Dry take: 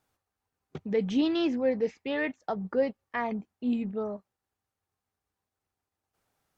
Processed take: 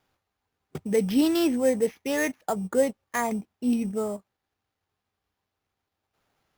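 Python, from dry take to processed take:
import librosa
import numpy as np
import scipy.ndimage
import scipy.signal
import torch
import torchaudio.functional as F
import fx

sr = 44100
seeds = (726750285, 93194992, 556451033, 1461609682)

y = fx.sample_hold(x, sr, seeds[0], rate_hz=8300.0, jitter_pct=0)
y = y * 10.0 ** (4.0 / 20.0)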